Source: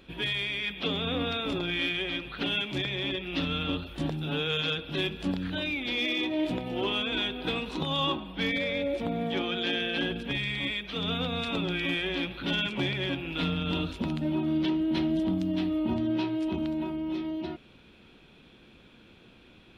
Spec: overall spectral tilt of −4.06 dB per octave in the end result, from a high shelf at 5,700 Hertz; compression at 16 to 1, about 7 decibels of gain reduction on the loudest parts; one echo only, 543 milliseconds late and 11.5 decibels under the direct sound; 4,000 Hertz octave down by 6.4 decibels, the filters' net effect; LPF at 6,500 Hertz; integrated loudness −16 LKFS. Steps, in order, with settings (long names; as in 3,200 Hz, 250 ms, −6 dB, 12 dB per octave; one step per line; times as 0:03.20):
low-pass filter 6,500 Hz
parametric band 4,000 Hz −6 dB
high-shelf EQ 5,700 Hz −6 dB
downward compressor 16 to 1, threshold −31 dBFS
single-tap delay 543 ms −11.5 dB
level +19 dB